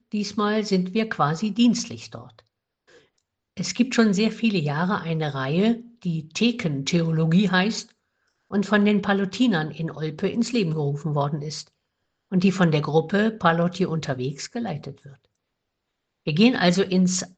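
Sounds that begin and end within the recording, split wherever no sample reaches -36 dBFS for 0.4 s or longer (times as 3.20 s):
3.57–7.83 s
8.51–11.62 s
12.32–15.09 s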